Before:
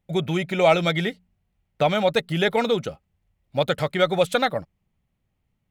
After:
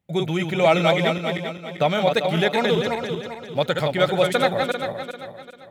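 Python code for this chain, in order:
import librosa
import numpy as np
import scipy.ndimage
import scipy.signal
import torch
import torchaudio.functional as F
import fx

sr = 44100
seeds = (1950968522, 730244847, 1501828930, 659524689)

y = fx.reverse_delay_fb(x, sr, ms=197, feedback_pct=60, wet_db=-4.0)
y = scipy.signal.sosfilt(scipy.signal.butter(2, 77.0, 'highpass', fs=sr, output='sos'), y)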